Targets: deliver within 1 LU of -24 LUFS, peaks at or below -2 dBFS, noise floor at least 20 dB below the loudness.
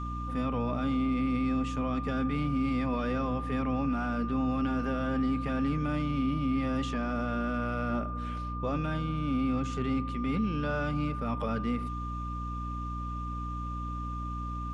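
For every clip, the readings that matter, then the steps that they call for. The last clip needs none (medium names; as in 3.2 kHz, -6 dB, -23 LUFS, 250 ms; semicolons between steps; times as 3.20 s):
hum 60 Hz; highest harmonic 300 Hz; hum level -34 dBFS; steady tone 1.2 kHz; tone level -38 dBFS; loudness -31.5 LUFS; peak level -19.5 dBFS; loudness target -24.0 LUFS
-> de-hum 60 Hz, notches 5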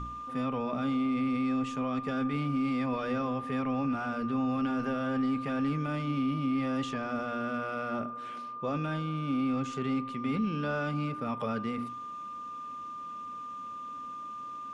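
hum not found; steady tone 1.2 kHz; tone level -38 dBFS
-> band-stop 1.2 kHz, Q 30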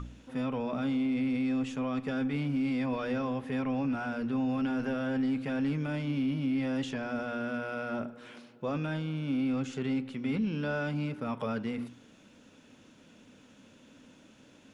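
steady tone not found; loudness -32.5 LUFS; peak level -21.5 dBFS; loudness target -24.0 LUFS
-> trim +8.5 dB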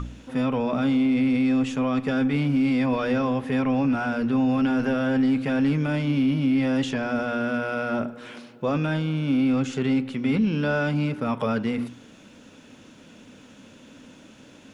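loudness -24.0 LUFS; peak level -13.0 dBFS; noise floor -50 dBFS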